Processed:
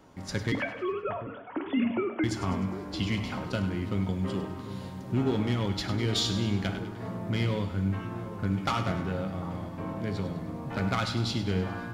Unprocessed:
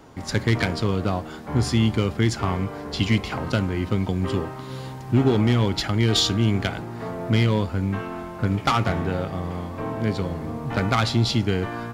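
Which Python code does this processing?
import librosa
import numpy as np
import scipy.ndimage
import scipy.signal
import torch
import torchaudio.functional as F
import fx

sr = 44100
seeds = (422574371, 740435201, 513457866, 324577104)

p1 = fx.sine_speech(x, sr, at=(0.52, 2.24))
p2 = p1 + fx.echo_split(p1, sr, split_hz=1000.0, low_ms=747, high_ms=101, feedback_pct=52, wet_db=-11.5, dry=0)
p3 = fx.rev_fdn(p2, sr, rt60_s=0.72, lf_ratio=1.35, hf_ratio=0.8, size_ms=32.0, drr_db=8.0)
y = F.gain(torch.from_numpy(p3), -8.5).numpy()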